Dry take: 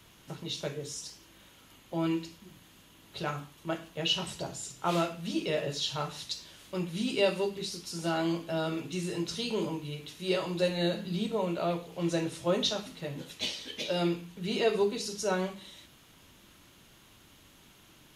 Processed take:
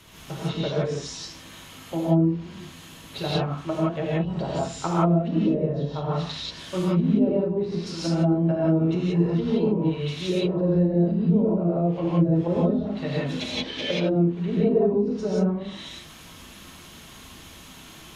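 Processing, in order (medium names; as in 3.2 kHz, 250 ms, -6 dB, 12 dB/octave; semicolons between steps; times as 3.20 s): low-pass that closes with the level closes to 350 Hz, closed at -28 dBFS; gated-style reverb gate 200 ms rising, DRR -7 dB; trim +5.5 dB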